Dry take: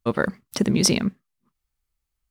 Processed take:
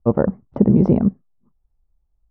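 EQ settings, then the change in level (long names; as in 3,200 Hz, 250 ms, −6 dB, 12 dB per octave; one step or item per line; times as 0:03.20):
low-pass with resonance 790 Hz, resonance Q 1.8
spectral tilt −3 dB per octave
0.0 dB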